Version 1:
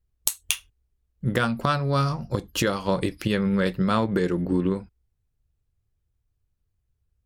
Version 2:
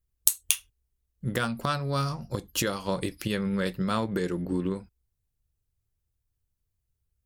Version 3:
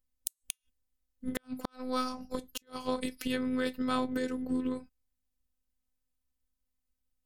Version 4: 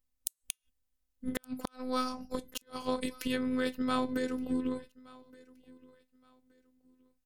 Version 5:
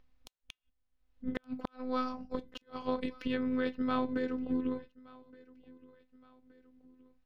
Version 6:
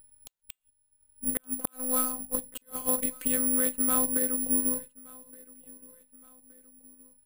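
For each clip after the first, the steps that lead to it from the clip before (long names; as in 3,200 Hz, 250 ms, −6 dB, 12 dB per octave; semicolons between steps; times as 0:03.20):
high-shelf EQ 5,600 Hz +10.5 dB; level −5.5 dB
phases set to zero 255 Hz; gate with flip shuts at −13 dBFS, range −40 dB; level −1 dB
repeating echo 1,171 ms, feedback 27%, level −23 dB
upward compression, threshold −51 dBFS; high-frequency loss of the air 260 metres
bad sample-rate conversion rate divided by 4×, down filtered, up zero stuff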